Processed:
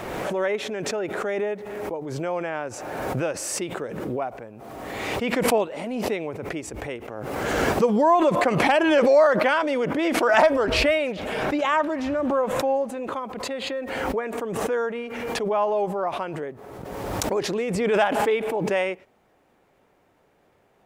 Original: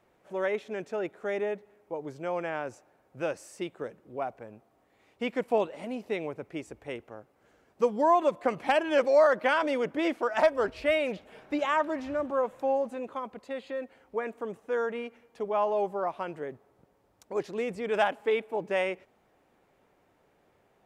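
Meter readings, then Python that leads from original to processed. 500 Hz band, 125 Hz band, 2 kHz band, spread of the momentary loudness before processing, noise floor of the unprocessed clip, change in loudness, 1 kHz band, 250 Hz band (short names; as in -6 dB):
+5.5 dB, +14.5 dB, +7.5 dB, 15 LU, -68 dBFS, +6.0 dB, +6.0 dB, +9.0 dB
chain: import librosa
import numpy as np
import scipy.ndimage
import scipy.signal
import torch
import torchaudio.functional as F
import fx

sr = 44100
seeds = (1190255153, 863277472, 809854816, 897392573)

y = fx.pre_swell(x, sr, db_per_s=28.0)
y = F.gain(torch.from_numpy(y), 4.0).numpy()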